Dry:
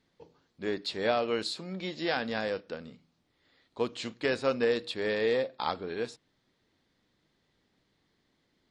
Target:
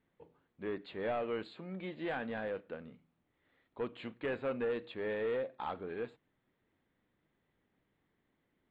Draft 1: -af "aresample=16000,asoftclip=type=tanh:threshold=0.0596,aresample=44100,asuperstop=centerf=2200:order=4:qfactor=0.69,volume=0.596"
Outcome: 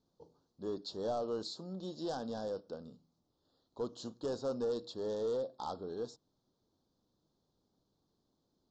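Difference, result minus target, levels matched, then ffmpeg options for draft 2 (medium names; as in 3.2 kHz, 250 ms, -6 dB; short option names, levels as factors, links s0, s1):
2 kHz band -15.5 dB
-af "aresample=16000,asoftclip=type=tanh:threshold=0.0596,aresample=44100,asuperstop=centerf=5800:order=4:qfactor=0.69,volume=0.596"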